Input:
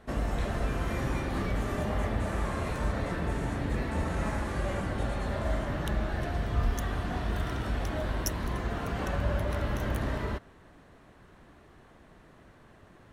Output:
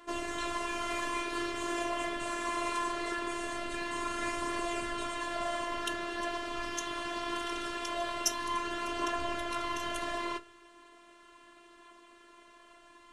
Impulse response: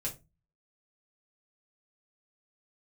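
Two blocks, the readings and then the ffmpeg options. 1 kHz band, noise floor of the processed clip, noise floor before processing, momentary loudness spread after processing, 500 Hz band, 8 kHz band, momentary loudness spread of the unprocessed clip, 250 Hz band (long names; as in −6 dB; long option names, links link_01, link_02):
+3.0 dB, −58 dBFS, −56 dBFS, 3 LU, −2.5 dB, +6.0 dB, 2 LU, −4.5 dB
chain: -filter_complex "[0:a]aphaser=in_gain=1:out_gain=1:delay=3.7:decay=0.28:speed=0.22:type=triangular,highpass=frequency=110:width=0.5412,highpass=frequency=110:width=1.3066,equalizer=frequency=290:width_type=q:width=4:gain=-7,equalizer=frequency=510:width_type=q:width=4:gain=6,equalizer=frequency=780:width_type=q:width=4:gain=-9,equalizer=frequency=1100:width_type=q:width=4:gain=7,equalizer=frequency=2900:width_type=q:width=4:gain=7,lowpass=frequency=9000:width=0.5412,lowpass=frequency=9000:width=1.3066,crystalizer=i=2:c=0,asplit=2[link_01][link_02];[1:a]atrim=start_sample=2205[link_03];[link_02][link_03]afir=irnorm=-1:irlink=0,volume=-8dB[link_04];[link_01][link_04]amix=inputs=2:normalize=0,afftfilt=real='hypot(re,im)*cos(PI*b)':imag='0':win_size=512:overlap=0.75"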